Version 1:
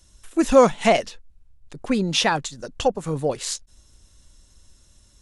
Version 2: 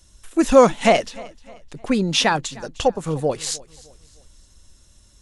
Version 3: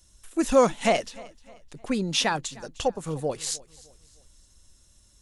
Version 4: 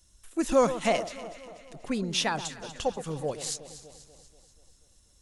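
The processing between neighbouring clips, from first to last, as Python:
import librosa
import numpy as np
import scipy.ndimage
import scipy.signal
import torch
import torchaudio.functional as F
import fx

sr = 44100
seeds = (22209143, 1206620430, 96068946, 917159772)

y1 = fx.echo_feedback(x, sr, ms=306, feedback_pct=40, wet_db=-22.0)
y1 = y1 * librosa.db_to_amplitude(2.0)
y2 = fx.high_shelf(y1, sr, hz=6800.0, db=6.5)
y2 = y2 * librosa.db_to_amplitude(-7.0)
y3 = fx.echo_alternate(y2, sr, ms=121, hz=1400.0, feedback_pct=74, wet_db=-12.0)
y3 = y3 * librosa.db_to_amplitude(-3.5)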